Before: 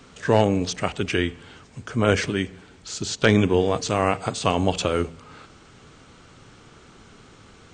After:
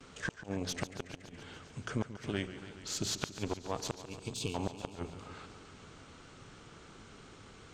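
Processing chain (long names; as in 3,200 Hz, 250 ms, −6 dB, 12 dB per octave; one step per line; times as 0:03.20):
mains-hum notches 60/120/180/240 Hz
noise gate with hold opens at −46 dBFS
harmonic generator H 4 −10 dB, 5 −23 dB, 6 −19 dB, 8 −21 dB, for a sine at −4 dBFS
dynamic equaliser 900 Hz, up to +6 dB, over −34 dBFS, Q 2.8
downward compressor 4 to 1, threshold −23 dBFS, peak gain reduction 14 dB
gain on a spectral selection 0:03.99–0:04.55, 490–2,200 Hz −26 dB
gate with flip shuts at −13 dBFS, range −36 dB
feedback echo with a swinging delay time 141 ms, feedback 74%, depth 104 cents, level −13 dB
level −7.5 dB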